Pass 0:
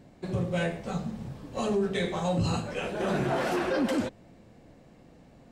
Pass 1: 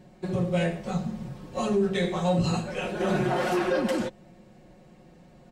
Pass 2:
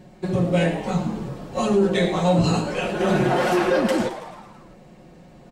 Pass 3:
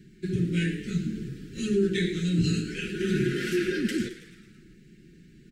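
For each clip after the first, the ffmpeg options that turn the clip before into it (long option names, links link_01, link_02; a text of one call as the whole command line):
ffmpeg -i in.wav -af "aecho=1:1:5.5:0.65" out.wav
ffmpeg -i in.wav -filter_complex "[0:a]asplit=7[link_01][link_02][link_03][link_04][link_05][link_06][link_07];[link_02]adelay=109,afreqshift=130,volume=-13dB[link_08];[link_03]adelay=218,afreqshift=260,volume=-17.6dB[link_09];[link_04]adelay=327,afreqshift=390,volume=-22.2dB[link_10];[link_05]adelay=436,afreqshift=520,volume=-26.7dB[link_11];[link_06]adelay=545,afreqshift=650,volume=-31.3dB[link_12];[link_07]adelay=654,afreqshift=780,volume=-35.9dB[link_13];[link_01][link_08][link_09][link_10][link_11][link_12][link_13]amix=inputs=7:normalize=0,volume=5.5dB" out.wav
ffmpeg -i in.wav -af "asuperstop=centerf=790:order=12:qfactor=0.73,volume=-4.5dB" out.wav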